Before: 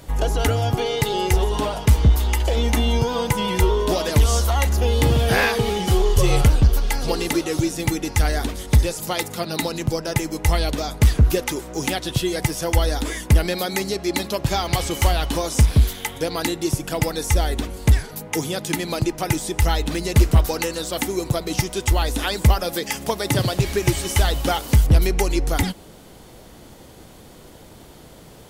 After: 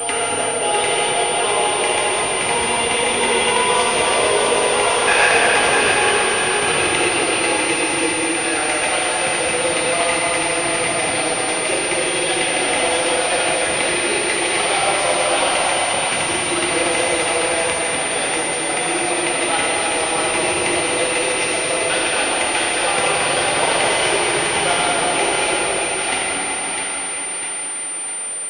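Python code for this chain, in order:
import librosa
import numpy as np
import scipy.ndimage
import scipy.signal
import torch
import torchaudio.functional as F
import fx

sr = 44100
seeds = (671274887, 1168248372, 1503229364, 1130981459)

y = fx.block_reorder(x, sr, ms=89.0, group=7)
y = scipy.signal.sosfilt(scipy.signal.butter(2, 530.0, 'highpass', fs=sr, output='sos'), y)
y = fx.peak_eq(y, sr, hz=2600.0, db=7.0, octaves=0.32)
y = fx.quant_companded(y, sr, bits=4)
y = fx.echo_split(y, sr, split_hz=930.0, low_ms=228, high_ms=653, feedback_pct=52, wet_db=-4.5)
y = fx.rev_plate(y, sr, seeds[0], rt60_s=4.8, hf_ratio=0.9, predelay_ms=0, drr_db=-6.5)
y = fx.pwm(y, sr, carrier_hz=9100.0)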